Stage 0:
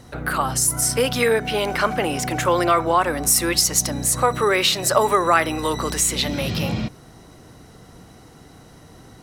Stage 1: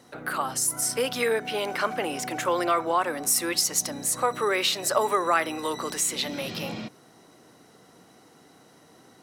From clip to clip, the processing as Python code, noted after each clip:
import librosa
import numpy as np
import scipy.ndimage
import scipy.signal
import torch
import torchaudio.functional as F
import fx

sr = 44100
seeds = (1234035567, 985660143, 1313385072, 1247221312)

y = scipy.signal.sosfilt(scipy.signal.butter(2, 230.0, 'highpass', fs=sr, output='sos'), x)
y = y * librosa.db_to_amplitude(-6.0)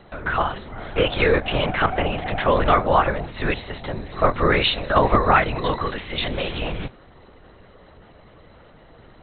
y = fx.lpc_vocoder(x, sr, seeds[0], excitation='whisper', order=10)
y = y * librosa.db_to_amplitude(7.0)